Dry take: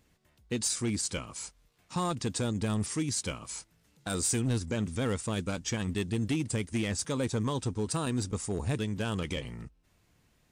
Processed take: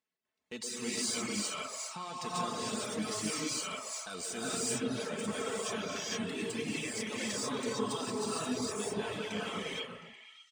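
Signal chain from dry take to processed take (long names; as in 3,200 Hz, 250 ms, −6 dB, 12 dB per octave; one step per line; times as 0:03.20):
running median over 3 samples
meter weighting curve A
noise gate −59 dBFS, range −17 dB
low-shelf EQ 88 Hz +5.5 dB
comb filter 4.6 ms, depth 43%
brickwall limiter −27.5 dBFS, peak gain reduction 8 dB
reverb whose tail is shaped and stops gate 490 ms rising, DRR −7.5 dB
reverb reduction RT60 0.84 s
on a send: echo through a band-pass that steps 119 ms, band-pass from 490 Hz, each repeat 0.7 octaves, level −3 dB
on the sum: level −3.5 dB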